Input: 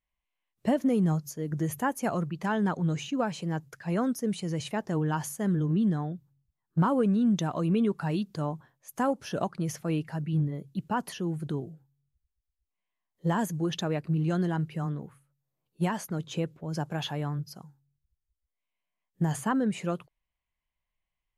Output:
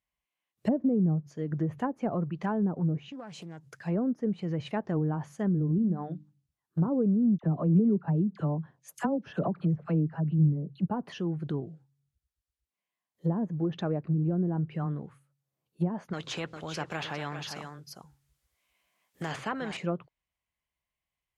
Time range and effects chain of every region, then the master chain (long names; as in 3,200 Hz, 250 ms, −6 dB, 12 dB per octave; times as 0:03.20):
0:02.97–0:03.85: downward compressor 4 to 1, threshold −41 dBFS + highs frequency-modulated by the lows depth 0.22 ms
0:05.78–0:06.88: high-pass filter 91 Hz 6 dB per octave + mains-hum notches 50/100/150/200/250/300 Hz
0:07.38–0:10.88: parametric band 170 Hz +5.5 dB 0.5 octaves + all-pass dispersion lows, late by 53 ms, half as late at 1,100 Hz
0:16.13–0:19.77: low-shelf EQ 370 Hz −6 dB + single-tap delay 401 ms −14 dB + every bin compressed towards the loudest bin 2 to 1
whole clip: high-pass filter 59 Hz 12 dB per octave; treble cut that deepens with the level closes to 490 Hz, closed at −23 dBFS; notch filter 940 Hz, Q 29